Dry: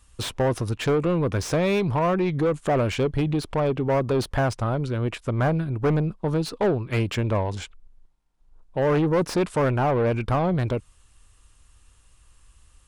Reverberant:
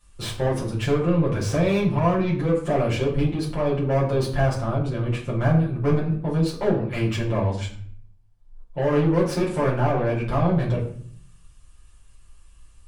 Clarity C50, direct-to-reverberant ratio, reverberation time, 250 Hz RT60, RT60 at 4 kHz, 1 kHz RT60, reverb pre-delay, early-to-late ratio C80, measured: 7.0 dB, -7.5 dB, 0.55 s, 0.85 s, 0.40 s, 0.50 s, 6 ms, 11.5 dB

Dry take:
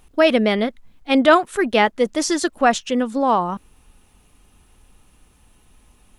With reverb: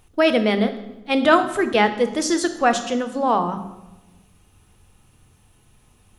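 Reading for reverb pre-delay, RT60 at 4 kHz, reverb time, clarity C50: 3 ms, 0.75 s, 1.1 s, 11.5 dB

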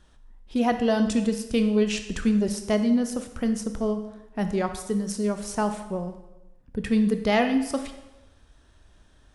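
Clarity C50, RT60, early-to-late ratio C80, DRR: 9.5 dB, 1.0 s, 12.0 dB, 7.5 dB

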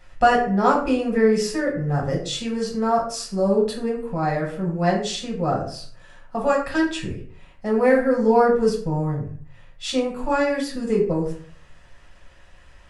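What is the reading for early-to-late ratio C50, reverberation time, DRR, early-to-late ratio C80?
7.5 dB, 0.50 s, -2.5 dB, 11.0 dB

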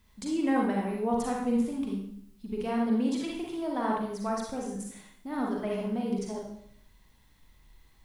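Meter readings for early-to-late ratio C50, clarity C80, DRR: 0.5 dB, 5.0 dB, -2.0 dB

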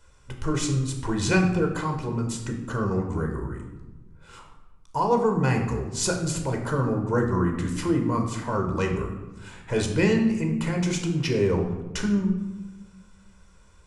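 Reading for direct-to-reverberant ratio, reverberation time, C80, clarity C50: 2.5 dB, 1.2 s, 9.0 dB, 6.5 dB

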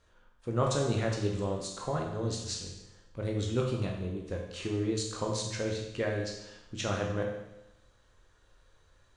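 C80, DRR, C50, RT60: 6.5 dB, -0.5 dB, 4.0 dB, 0.95 s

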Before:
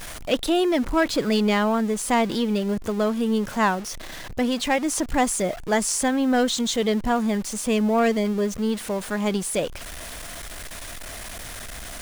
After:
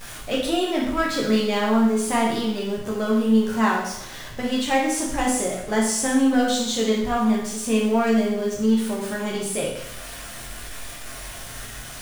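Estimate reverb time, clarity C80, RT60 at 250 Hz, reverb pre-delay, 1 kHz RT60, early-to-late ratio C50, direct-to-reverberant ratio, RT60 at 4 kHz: 0.75 s, 6.0 dB, 0.75 s, 7 ms, 0.75 s, 3.0 dB, -4.5 dB, 0.75 s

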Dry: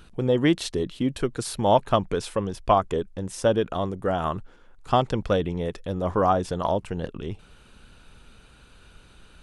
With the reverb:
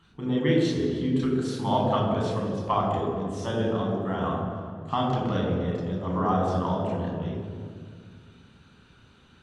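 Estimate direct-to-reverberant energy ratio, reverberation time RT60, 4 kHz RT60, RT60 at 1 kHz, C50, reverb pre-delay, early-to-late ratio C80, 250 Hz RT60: -3.5 dB, 2.0 s, 1.4 s, 1.9 s, 1.5 dB, 4 ms, 3.0 dB, 2.7 s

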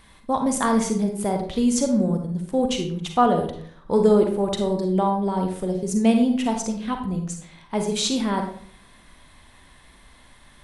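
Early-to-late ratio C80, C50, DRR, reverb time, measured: 10.0 dB, 6.0 dB, 4.0 dB, 0.55 s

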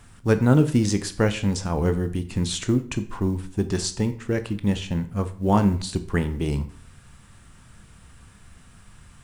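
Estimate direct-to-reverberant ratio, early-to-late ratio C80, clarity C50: 9.5 dB, 18.0 dB, 14.0 dB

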